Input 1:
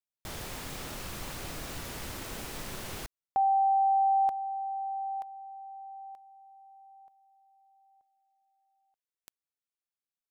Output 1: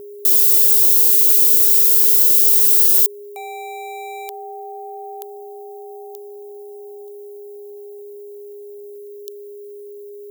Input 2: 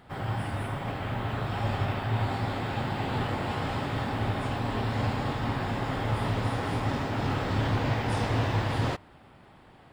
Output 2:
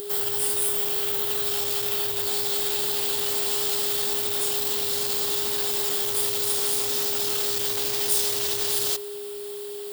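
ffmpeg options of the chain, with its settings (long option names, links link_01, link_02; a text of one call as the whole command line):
ffmpeg -i in.wav -filter_complex "[0:a]aexciter=amount=4:drive=7.6:freq=3100,bandreject=frequency=980:width=19,asplit=2[link_01][link_02];[link_02]acompressor=threshold=-36dB:ratio=16:attack=0.16:release=43:detection=peak,volume=3dB[link_03];[link_01][link_03]amix=inputs=2:normalize=0,volume=26dB,asoftclip=hard,volume=-26dB,aemphasis=mode=production:type=riaa,aeval=exprs='val(0)+0.0398*sin(2*PI*410*n/s)':channel_layout=same,volume=-5dB" out.wav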